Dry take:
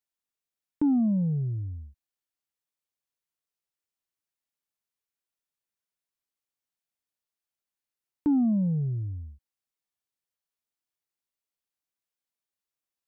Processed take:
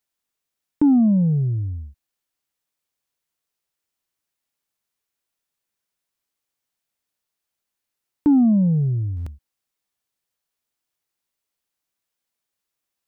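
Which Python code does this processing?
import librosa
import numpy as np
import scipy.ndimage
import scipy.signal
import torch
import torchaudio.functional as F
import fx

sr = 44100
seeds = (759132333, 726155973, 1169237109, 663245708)

y = fx.buffer_glitch(x, sr, at_s=(9.16,), block=512, repeats=8)
y = F.gain(torch.from_numpy(y), 8.0).numpy()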